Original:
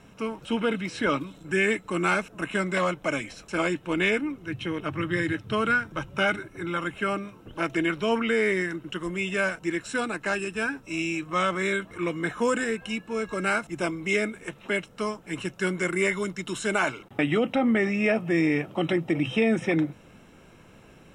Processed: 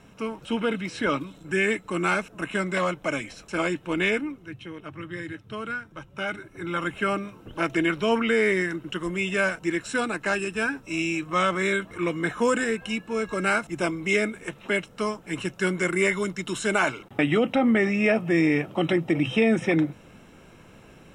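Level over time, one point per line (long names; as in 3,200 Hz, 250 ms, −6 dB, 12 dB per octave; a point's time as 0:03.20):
0:04.18 0 dB
0:04.64 −8.5 dB
0:06.09 −8.5 dB
0:06.84 +2 dB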